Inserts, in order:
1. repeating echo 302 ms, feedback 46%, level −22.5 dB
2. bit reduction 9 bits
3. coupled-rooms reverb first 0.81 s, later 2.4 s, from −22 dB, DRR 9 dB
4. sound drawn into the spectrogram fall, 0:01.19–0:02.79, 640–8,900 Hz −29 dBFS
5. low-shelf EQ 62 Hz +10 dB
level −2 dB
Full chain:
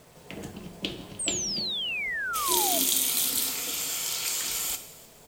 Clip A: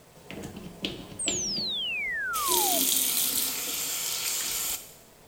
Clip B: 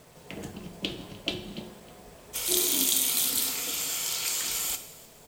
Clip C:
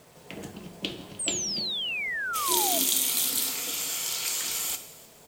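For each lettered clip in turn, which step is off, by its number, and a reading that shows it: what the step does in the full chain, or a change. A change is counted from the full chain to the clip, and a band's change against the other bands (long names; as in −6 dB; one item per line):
1, change in momentary loudness spread −3 LU
4, 1 kHz band −9.0 dB
5, 125 Hz band −1.5 dB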